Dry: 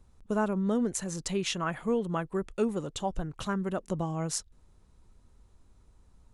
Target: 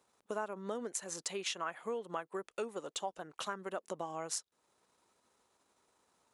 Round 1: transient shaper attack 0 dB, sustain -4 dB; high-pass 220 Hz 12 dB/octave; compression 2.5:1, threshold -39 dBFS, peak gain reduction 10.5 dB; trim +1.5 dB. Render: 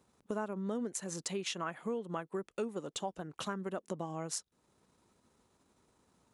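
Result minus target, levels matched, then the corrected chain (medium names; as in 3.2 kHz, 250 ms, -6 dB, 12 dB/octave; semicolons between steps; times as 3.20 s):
250 Hz band +6.5 dB
transient shaper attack 0 dB, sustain -4 dB; high-pass 500 Hz 12 dB/octave; compression 2.5:1, threshold -39 dBFS, peak gain reduction 9.5 dB; trim +1.5 dB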